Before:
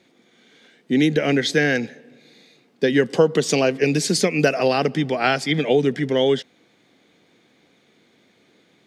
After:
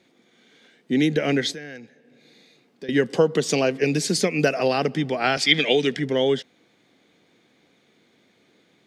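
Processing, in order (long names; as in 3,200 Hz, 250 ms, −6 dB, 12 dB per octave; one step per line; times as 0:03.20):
0:01.52–0:02.89: downward compressor 2 to 1, threshold −46 dBFS, peak gain reduction 17.5 dB
0:05.37–0:05.97: meter weighting curve D
level −2.5 dB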